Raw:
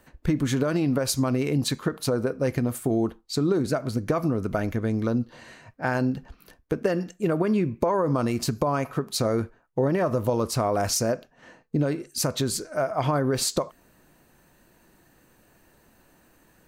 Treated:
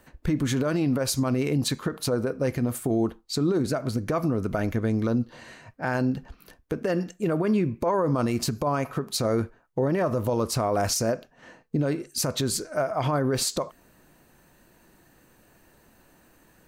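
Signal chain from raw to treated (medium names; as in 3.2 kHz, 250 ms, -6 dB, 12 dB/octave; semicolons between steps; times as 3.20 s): peak limiter -16.5 dBFS, peak gain reduction 7 dB; trim +1 dB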